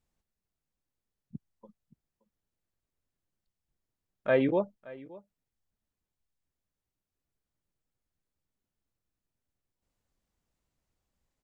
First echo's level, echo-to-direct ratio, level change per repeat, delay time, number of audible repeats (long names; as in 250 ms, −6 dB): −20.5 dB, −20.5 dB, repeats not evenly spaced, 573 ms, 1